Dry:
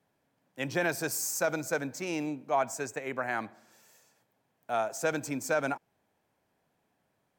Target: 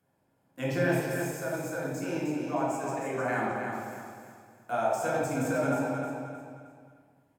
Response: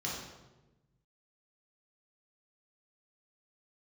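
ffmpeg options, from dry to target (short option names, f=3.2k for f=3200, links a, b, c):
-filter_complex "[0:a]aexciter=amount=6.1:drive=5.5:freq=6.1k,asettb=1/sr,asplit=3[a][b][c];[a]atrim=end=0.994[d];[b]atrim=start=0.99:end=3.22,asetpts=PTS-STARTPTS,afade=t=in:d=0.004:c=qsin,afade=t=out:st=2.226:d=0.004:c=qsin,acompressor=threshold=-39dB:ratio=2[e];[c]atrim=start=3.216[f];[d][e]acrossfade=d=0.004:c1=hsin:c2=qsin[g];[g][f]acrossfade=d=0.004:c1=qsin:c2=hsin,alimiter=limit=-21.5dB:level=0:latency=1:release=236,acompressor=mode=upward:threshold=-40dB:ratio=2.5,highshelf=f=10k:g=-6,agate=range=-19dB:threshold=-50dB:ratio=16:detection=peak,highshelf=f=3k:g=-9.5,aecho=1:1:311|622|933|1244:0.501|0.175|0.0614|0.0215[h];[1:a]atrim=start_sample=2205,asetrate=32193,aresample=44100[i];[h][i]afir=irnorm=-1:irlink=0"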